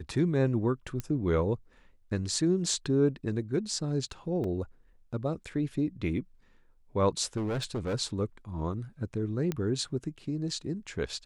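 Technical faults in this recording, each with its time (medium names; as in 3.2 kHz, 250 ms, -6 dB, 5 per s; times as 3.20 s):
1.00 s: pop -20 dBFS
4.44 s: dropout 2.6 ms
7.36–7.95 s: clipped -28.5 dBFS
9.52 s: pop -18 dBFS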